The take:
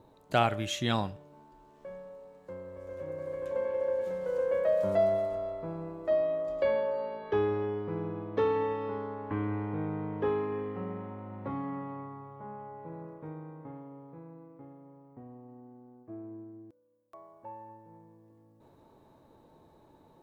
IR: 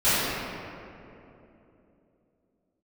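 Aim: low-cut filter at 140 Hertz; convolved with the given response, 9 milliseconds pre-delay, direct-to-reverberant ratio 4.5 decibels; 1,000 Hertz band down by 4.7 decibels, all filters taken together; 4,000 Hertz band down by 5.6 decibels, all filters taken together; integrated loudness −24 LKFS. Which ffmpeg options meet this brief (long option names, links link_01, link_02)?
-filter_complex "[0:a]highpass=140,equalizer=frequency=1000:width_type=o:gain=-6.5,equalizer=frequency=4000:width_type=o:gain=-7,asplit=2[link_01][link_02];[1:a]atrim=start_sample=2205,adelay=9[link_03];[link_02][link_03]afir=irnorm=-1:irlink=0,volume=-23.5dB[link_04];[link_01][link_04]amix=inputs=2:normalize=0,volume=10dB"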